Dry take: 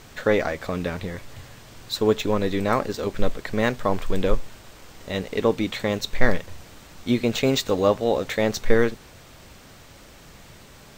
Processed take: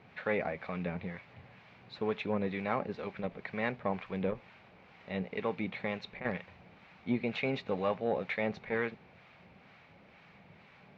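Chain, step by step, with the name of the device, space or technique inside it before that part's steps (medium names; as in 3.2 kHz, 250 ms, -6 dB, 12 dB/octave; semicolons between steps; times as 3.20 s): guitar amplifier with harmonic tremolo (harmonic tremolo 2.1 Hz, depth 50%, crossover 790 Hz; saturation -11 dBFS, distortion -15 dB; cabinet simulation 110–3500 Hz, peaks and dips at 180 Hz +7 dB, 310 Hz -5 dB, 790 Hz +5 dB, 2.3 kHz +8 dB, 3.3 kHz -4 dB); trim -8.5 dB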